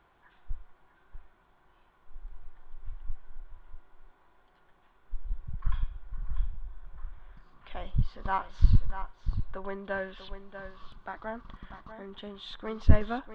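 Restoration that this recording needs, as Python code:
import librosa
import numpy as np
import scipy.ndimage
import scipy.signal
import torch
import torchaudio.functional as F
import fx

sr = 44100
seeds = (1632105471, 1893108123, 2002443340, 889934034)

y = fx.fix_echo_inverse(x, sr, delay_ms=643, level_db=-10.5)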